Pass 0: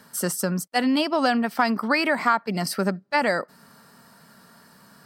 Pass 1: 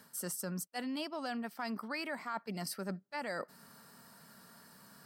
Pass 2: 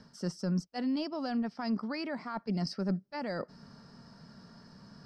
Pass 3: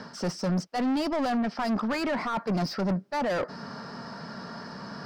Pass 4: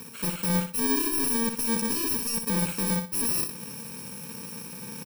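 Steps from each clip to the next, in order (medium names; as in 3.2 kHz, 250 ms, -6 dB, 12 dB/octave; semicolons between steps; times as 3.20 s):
treble shelf 6.8 kHz +6.5 dB; reverse; compression 5:1, threshold -30 dBFS, peak gain reduction 15 dB; reverse; trim -7 dB
resonant low-pass 5.3 kHz, resonance Q 5.9; tilt EQ -4 dB/octave
overdrive pedal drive 27 dB, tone 1.6 kHz, clips at -21.5 dBFS; trim +2 dB
bit-reversed sample order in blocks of 64 samples; feedback delay 61 ms, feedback 26%, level -7 dB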